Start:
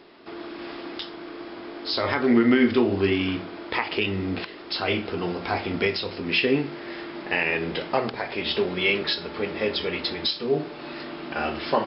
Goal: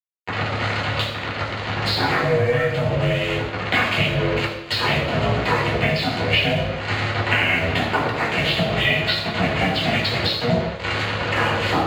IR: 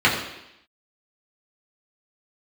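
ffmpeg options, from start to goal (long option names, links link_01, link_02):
-filter_complex "[0:a]acrusher=bits=4:mix=0:aa=0.5,aeval=exprs='val(0)*sin(2*PI*240*n/s)':channel_layout=same,acompressor=threshold=-40dB:ratio=10[link_01];[1:a]atrim=start_sample=2205,asetrate=42777,aresample=44100[link_02];[link_01][link_02]afir=irnorm=-1:irlink=0,volume=3.5dB"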